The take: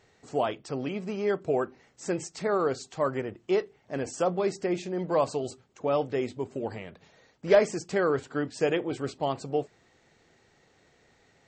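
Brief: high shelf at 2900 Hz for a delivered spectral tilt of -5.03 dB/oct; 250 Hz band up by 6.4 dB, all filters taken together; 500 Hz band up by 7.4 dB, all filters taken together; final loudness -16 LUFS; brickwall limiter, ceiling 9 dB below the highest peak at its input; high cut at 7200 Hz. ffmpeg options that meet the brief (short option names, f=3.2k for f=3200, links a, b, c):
-af "lowpass=7.2k,equalizer=f=250:t=o:g=5.5,equalizer=f=500:t=o:g=8,highshelf=f=2.9k:g=-9,volume=9dB,alimiter=limit=-4dB:level=0:latency=1"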